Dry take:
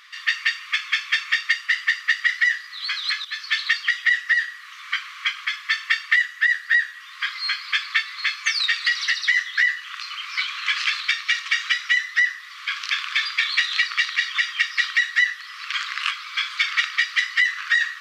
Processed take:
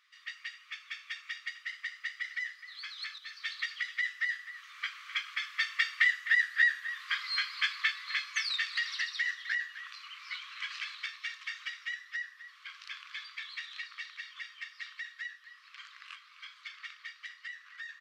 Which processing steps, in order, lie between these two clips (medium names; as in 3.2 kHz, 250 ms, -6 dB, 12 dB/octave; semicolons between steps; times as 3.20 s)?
Doppler pass-by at 6.75 s, 7 m/s, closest 9 m; echo from a far wall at 44 m, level -12 dB; trim -6.5 dB